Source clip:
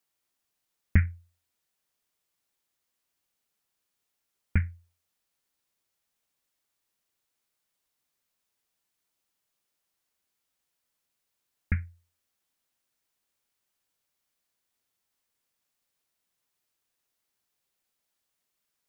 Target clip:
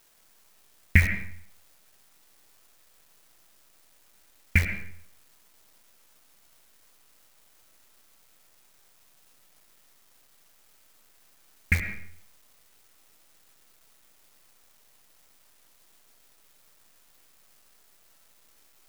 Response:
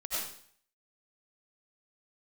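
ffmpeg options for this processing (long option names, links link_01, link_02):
-filter_complex "[0:a]aexciter=amount=11.8:drive=2.4:freq=2000,acrusher=bits=6:dc=4:mix=0:aa=0.000001,asplit=2[link_01][link_02];[1:a]atrim=start_sample=2205,lowpass=2300[link_03];[link_02][link_03]afir=irnorm=-1:irlink=0,volume=-8.5dB[link_04];[link_01][link_04]amix=inputs=2:normalize=0"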